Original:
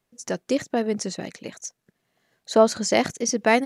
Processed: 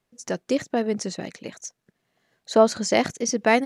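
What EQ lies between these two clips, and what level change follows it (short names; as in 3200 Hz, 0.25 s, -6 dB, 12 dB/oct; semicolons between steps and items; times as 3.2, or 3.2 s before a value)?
high shelf 10000 Hz -6.5 dB; 0.0 dB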